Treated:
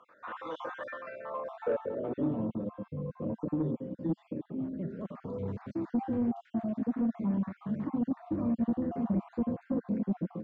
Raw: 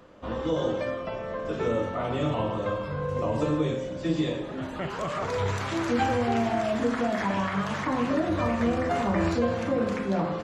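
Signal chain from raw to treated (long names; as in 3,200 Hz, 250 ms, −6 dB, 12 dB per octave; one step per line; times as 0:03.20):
time-frequency cells dropped at random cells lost 41%
band-pass filter sweep 1,400 Hz → 220 Hz, 0:01.05–0:02.41
soft clipping −26 dBFS, distortion −17 dB
level +4 dB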